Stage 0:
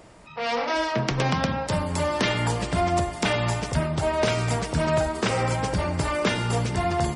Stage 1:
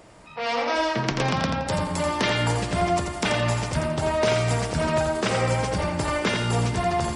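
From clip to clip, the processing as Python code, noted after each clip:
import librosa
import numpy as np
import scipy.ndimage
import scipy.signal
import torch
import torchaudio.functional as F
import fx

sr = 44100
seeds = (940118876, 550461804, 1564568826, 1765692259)

y = fx.low_shelf(x, sr, hz=190.0, db=-3.0)
y = fx.echo_feedback(y, sr, ms=85, feedback_pct=29, wet_db=-5.5)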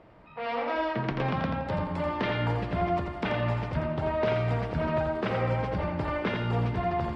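y = fx.air_absorb(x, sr, metres=380.0)
y = y * librosa.db_to_amplitude(-3.5)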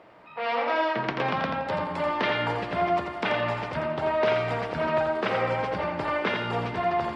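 y = fx.highpass(x, sr, hz=530.0, slope=6)
y = y * librosa.db_to_amplitude(6.0)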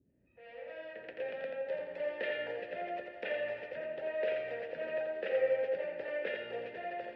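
y = fx.fade_in_head(x, sr, length_s=2.07)
y = fx.vowel_filter(y, sr, vowel='e')
y = fx.dmg_noise_band(y, sr, seeds[0], low_hz=41.0, high_hz=350.0, level_db=-74.0)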